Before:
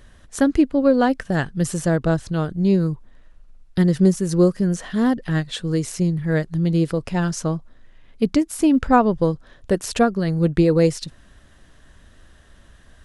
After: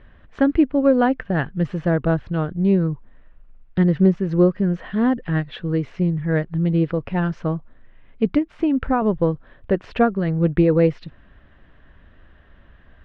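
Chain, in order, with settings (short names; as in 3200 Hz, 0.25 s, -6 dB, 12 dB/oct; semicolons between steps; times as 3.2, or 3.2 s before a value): LPF 2800 Hz 24 dB/oct; 8.38–9.02 compressor, threshold -16 dBFS, peak gain reduction 7 dB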